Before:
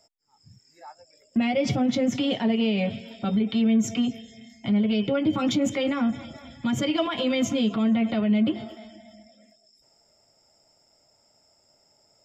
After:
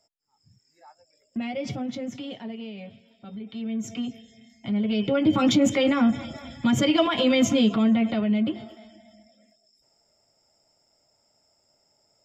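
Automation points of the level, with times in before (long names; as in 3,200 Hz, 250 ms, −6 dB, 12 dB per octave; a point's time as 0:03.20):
0:01.71 −7 dB
0:03.15 −17.5 dB
0:03.95 −6 dB
0:04.53 −6 dB
0:05.37 +4 dB
0:07.58 +4 dB
0:08.68 −4 dB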